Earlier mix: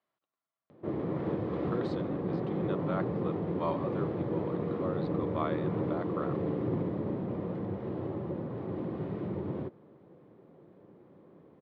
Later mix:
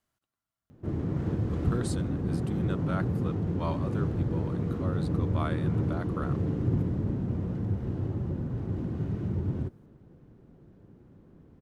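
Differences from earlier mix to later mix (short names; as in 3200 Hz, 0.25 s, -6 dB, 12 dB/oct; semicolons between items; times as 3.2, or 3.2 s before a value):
background -4.0 dB; master: remove speaker cabinet 250–3600 Hz, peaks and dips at 250 Hz -6 dB, 550 Hz +4 dB, 1100 Hz +3 dB, 1500 Hz -6 dB, 2800 Hz -5 dB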